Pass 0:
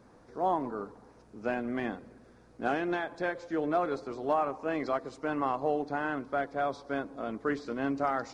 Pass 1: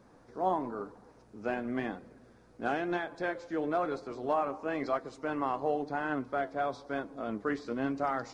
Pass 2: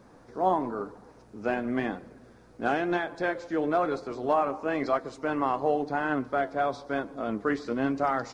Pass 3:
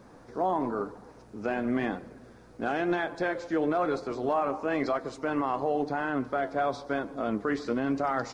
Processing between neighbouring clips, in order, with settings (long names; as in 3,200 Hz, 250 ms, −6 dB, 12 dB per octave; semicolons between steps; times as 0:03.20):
flanger 1 Hz, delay 5.2 ms, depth 5.8 ms, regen +72%; level +3 dB
slap from a distant wall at 25 metres, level −27 dB; level +5 dB
brickwall limiter −20.5 dBFS, peak gain reduction 7.5 dB; level +2 dB